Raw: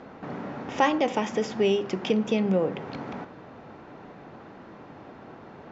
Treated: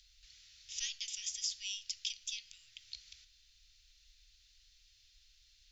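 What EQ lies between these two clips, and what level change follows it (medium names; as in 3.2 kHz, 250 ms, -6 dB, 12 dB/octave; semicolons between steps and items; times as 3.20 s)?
inverse Chebyshev band-stop 180–910 Hz, stop band 80 dB; +7.5 dB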